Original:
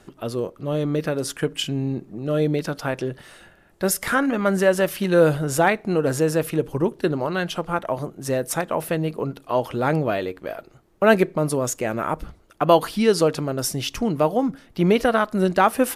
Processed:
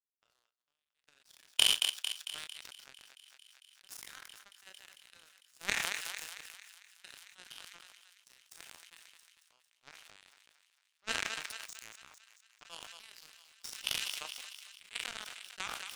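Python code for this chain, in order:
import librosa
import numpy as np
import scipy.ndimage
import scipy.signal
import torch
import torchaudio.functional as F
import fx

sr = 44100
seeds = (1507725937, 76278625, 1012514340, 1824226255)

y = fx.spec_trails(x, sr, decay_s=0.95)
y = fx.filter_sweep_bandpass(y, sr, from_hz=1500.0, to_hz=3100.0, start_s=0.05, end_s=1.11, q=1.2)
y = fx.transient(y, sr, attack_db=6, sustain_db=-11)
y = fx.tone_stack(y, sr, knobs='10-0-10')
y = fx.power_curve(y, sr, exponent=3.0)
y = fx.echo_thinned(y, sr, ms=225, feedback_pct=85, hz=620.0, wet_db=-23.5)
y = fx.sustainer(y, sr, db_per_s=25.0)
y = y * librosa.db_to_amplitude(4.0)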